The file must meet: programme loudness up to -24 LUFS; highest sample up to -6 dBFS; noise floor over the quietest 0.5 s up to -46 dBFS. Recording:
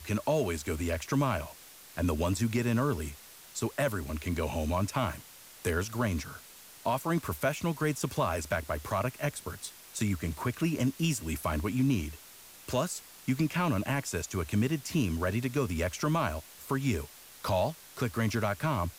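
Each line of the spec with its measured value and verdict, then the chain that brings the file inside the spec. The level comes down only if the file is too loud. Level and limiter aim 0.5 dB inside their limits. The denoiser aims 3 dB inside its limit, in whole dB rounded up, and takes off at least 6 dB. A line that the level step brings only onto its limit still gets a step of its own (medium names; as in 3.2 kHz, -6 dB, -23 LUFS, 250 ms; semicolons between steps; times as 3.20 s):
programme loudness -32.0 LUFS: pass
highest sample -18.0 dBFS: pass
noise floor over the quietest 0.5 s -52 dBFS: pass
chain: none needed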